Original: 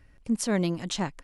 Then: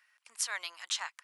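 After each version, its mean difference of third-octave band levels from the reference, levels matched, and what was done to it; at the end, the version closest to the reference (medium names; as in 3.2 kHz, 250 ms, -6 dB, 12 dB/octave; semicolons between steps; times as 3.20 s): 13.0 dB: high-pass 1.1 kHz 24 dB/octave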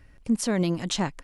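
1.0 dB: peak limiter -18.5 dBFS, peak gain reduction 5 dB; trim +3.5 dB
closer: second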